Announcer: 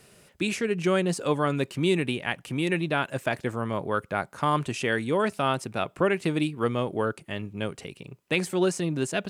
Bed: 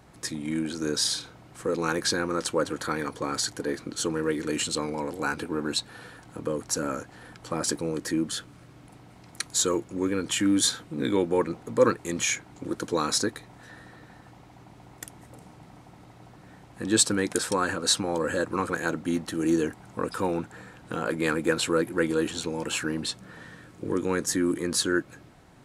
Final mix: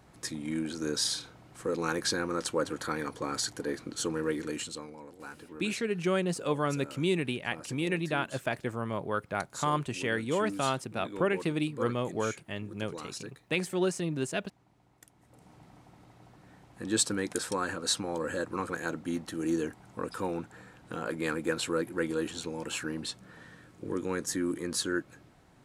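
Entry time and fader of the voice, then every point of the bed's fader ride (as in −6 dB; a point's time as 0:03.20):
5.20 s, −4.5 dB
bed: 0:04.38 −4 dB
0:04.99 −16.5 dB
0:15.13 −16.5 dB
0:15.54 −6 dB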